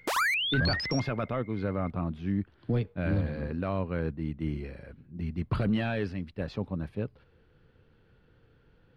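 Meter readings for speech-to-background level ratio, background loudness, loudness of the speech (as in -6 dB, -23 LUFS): -4.0 dB, -28.5 LUFS, -32.5 LUFS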